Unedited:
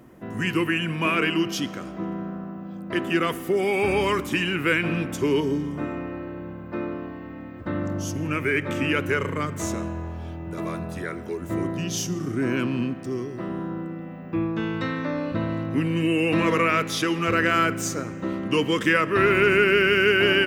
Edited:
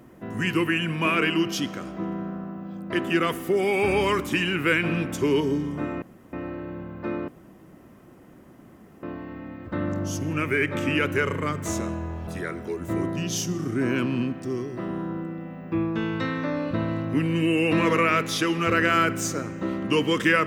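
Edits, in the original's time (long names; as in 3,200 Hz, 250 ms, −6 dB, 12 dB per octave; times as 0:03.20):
0:06.02: splice in room tone 0.31 s
0:06.97: splice in room tone 1.75 s
0:10.21–0:10.88: remove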